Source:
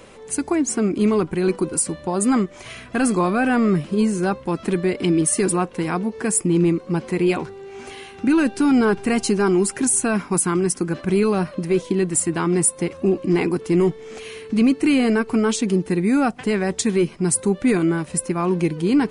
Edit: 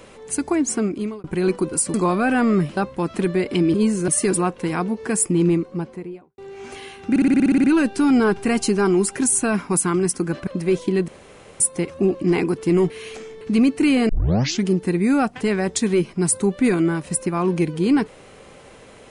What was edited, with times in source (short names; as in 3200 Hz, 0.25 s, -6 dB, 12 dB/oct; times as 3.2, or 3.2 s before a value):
0.75–1.24 fade out
1.94–3.09 cut
3.92–4.26 move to 5.23
6.52–7.53 studio fade out
8.25 stutter 0.06 s, 10 plays
11.08–11.5 cut
12.11–12.63 room tone
13.93–14.44 reverse
15.12 tape start 0.57 s